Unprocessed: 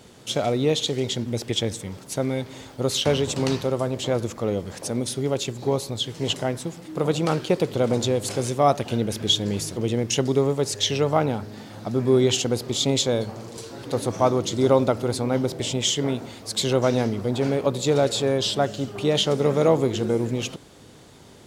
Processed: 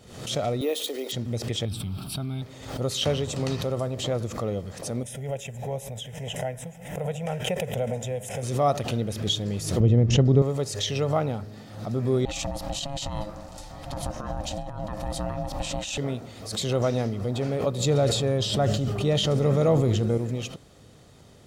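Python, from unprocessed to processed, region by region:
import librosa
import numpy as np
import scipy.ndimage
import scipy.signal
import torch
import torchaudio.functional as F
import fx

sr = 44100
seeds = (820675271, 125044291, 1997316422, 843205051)

y = fx.chain(x, sr, fx.cheby1_highpass(hz=270.0, order=5),
    fx.resample_bad(factor=3, down='none', up='hold'), at=(0.61, 1.12))
y = fx.chain(y, sr, fx.peak_eq(hz=1000.0, db=-6.5, octaves=0.57),
    fx.fixed_phaser(hz=1900.0, stages=6),
    fx.env_flatten(amount_pct=70), at=(1.65, 2.42))
y = fx.chain(y, sr, fx.peak_eq(hz=96.0, db=-13.0, octaves=0.32),
    fx.fixed_phaser(hz=1200.0, stages=6),
    fx.pre_swell(db_per_s=90.0), at=(5.03, 8.43))
y = fx.chain(y, sr, fx.lowpass(hz=7800.0, slope=24),
    fx.tilt_eq(slope=-3.5), at=(9.8, 10.42))
y = fx.chain(y, sr, fx.over_compress(threshold_db=-25.0, ratio=-1.0),
    fx.ring_mod(carrier_hz=420.0), at=(12.25, 15.98))
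y = fx.chain(y, sr, fx.low_shelf(hz=150.0, db=8.5),
    fx.sustainer(db_per_s=37.0), at=(17.8, 20.18))
y = fx.low_shelf(y, sr, hz=280.0, db=5.0)
y = y + 0.31 * np.pad(y, (int(1.6 * sr / 1000.0), 0))[:len(y)]
y = fx.pre_swell(y, sr, db_per_s=77.0)
y = F.gain(torch.from_numpy(y), -6.5).numpy()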